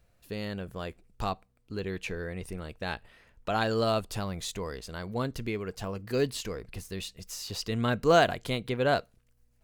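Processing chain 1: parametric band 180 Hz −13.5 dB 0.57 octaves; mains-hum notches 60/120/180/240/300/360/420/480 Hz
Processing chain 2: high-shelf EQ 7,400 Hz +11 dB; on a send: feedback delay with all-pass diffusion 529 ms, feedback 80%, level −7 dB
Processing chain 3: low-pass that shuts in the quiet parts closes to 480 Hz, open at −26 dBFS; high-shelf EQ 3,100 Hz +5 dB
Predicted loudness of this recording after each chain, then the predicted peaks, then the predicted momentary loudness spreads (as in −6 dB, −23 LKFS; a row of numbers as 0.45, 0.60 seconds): −32.5, −30.0, −31.0 LKFS; −8.5, −7.5, −8.0 dBFS; 14, 12, 15 LU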